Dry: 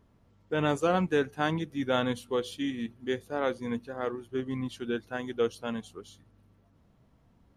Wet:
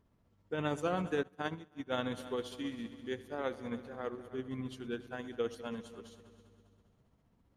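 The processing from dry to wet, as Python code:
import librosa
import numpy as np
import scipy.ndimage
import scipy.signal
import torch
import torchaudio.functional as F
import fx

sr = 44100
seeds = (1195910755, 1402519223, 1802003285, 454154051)

y = fx.echo_heads(x, sr, ms=100, heads='all three', feedback_pct=52, wet_db=-18.5)
y = y * (1.0 - 0.36 / 2.0 + 0.36 / 2.0 * np.cos(2.0 * np.pi * 15.0 * (np.arange(len(y)) / sr)))
y = fx.upward_expand(y, sr, threshold_db=-40.0, expansion=2.5, at=(1.23, 1.92))
y = y * 10.0 ** (-6.0 / 20.0)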